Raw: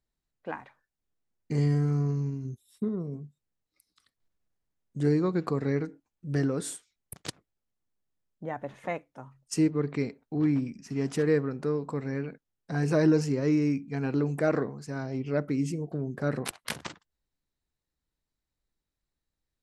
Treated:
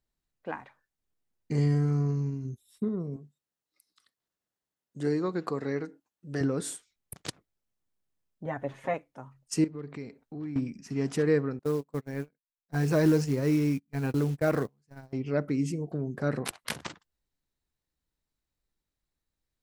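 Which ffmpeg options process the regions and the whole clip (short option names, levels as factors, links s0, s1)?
-filter_complex "[0:a]asettb=1/sr,asplit=3[s0][s1][s2];[s0]atrim=end=3.164[s3];[s1]atrim=start=3.16:end=6.41,asetpts=PTS-STARTPTS,afade=t=in:d=0.004:c=qsin,afade=t=out:st=3.246:d=0.004:c=qsin,highpass=f=330:p=1,bandreject=f=2300:w=14[s4];[s2]atrim=start=6.406[s5];[s3][s4]acrossfade=d=0.004:c1=hsin:c2=qsin[s6];[s6][s5]acrossfade=d=0.004:c1=qsin:c2=hsin,asettb=1/sr,asplit=3[s7][s8][s9];[s7]atrim=end=8.454[s10];[s8]atrim=start=8.45:end=8.94,asetpts=PTS-STARTPTS,afade=t=in:d=0.004:c=qsin,afade=t=out:st=0.486:d=0.004:c=qsin,aecho=1:1:7.4:0.78,atrim=end_sample=21609,acrossover=split=2900[s11][s12];[s12]acompressor=threshold=0.00158:ratio=4:attack=1:release=60[s13];[s11][s13]amix=inputs=2:normalize=0[s14];[s9]atrim=start=8.936[s15];[s10][s14]acrossfade=d=0.004:c1=hsin:c2=qsin[s16];[s16][s15]acrossfade=d=0.004:c1=qsin:c2=hsin,asettb=1/sr,asplit=3[s17][s18][s19];[s17]atrim=end=9.644[s20];[s18]atrim=start=9.64:end=10.56,asetpts=PTS-STARTPTS,afade=t=in:d=0.004:c=qsin,afade=t=out:st=0.916:d=0.004:c=qsin,asoftclip=type=hard:threshold=0.15,acompressor=threshold=0.00708:ratio=2:attack=3.2:release=140:knee=1:detection=peak[s21];[s19]atrim=start=10.556[s22];[s20][s21]acrossfade=d=0.004:c1=hsin:c2=qsin[s23];[s23][s22]acrossfade=d=0.004:c1=qsin:c2=hsin,asettb=1/sr,asplit=3[s24][s25][s26];[s24]atrim=end=11.594[s27];[s25]atrim=start=11.59:end=15.13,asetpts=PTS-STARTPTS,afade=t=in:d=0.004:c=qsin,afade=t=out:st=3.536:d=0.004:c=qsin,agate=range=0.0282:threshold=0.0251:ratio=16:release=100:detection=peak,asubboost=boost=2.5:cutoff=150,acrusher=bits=6:mode=log:mix=0:aa=0.000001[s28];[s26]atrim=start=15.126[s29];[s27][s28]acrossfade=d=0.004:c1=hsin:c2=qsin[s30];[s30][s29]acrossfade=d=0.004:c1=qsin:c2=hsin"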